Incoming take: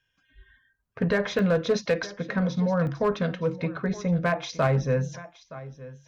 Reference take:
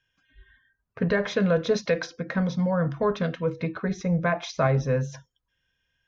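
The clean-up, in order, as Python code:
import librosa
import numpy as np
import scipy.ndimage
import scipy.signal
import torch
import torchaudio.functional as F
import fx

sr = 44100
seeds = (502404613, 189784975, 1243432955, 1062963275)

y = fx.fix_declip(x, sr, threshold_db=-16.0)
y = fx.fix_interpolate(y, sr, at_s=(1.39, 2.87), length_ms=1.1)
y = fx.fix_echo_inverse(y, sr, delay_ms=920, level_db=-17.5)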